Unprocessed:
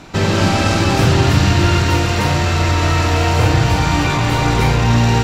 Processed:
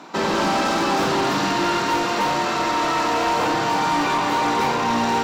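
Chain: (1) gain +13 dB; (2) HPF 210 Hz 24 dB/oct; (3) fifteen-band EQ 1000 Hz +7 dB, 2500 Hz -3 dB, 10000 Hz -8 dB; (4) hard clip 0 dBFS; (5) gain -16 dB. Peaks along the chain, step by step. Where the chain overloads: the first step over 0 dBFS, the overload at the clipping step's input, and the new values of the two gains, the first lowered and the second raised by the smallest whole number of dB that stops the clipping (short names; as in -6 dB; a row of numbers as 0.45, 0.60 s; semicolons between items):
+11.0, +8.0, +9.5, 0.0, -16.0 dBFS; step 1, 9.5 dB; step 1 +3 dB, step 5 -6 dB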